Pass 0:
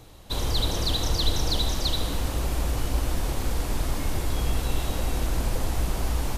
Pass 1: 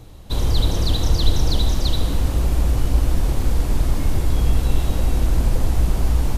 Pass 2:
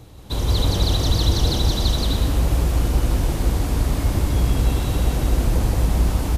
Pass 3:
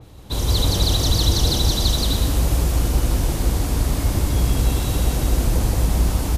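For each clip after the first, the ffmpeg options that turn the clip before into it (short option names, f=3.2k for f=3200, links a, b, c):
-af "lowshelf=f=350:g=9"
-filter_complex "[0:a]highpass=43,asplit=2[a][b];[b]aecho=0:1:174.9|285.7:0.794|0.282[c];[a][c]amix=inputs=2:normalize=0"
-af "adynamicequalizer=threshold=0.00891:dfrequency=4000:dqfactor=0.7:tfrequency=4000:tqfactor=0.7:attack=5:release=100:ratio=0.375:range=3.5:mode=boostabove:tftype=highshelf"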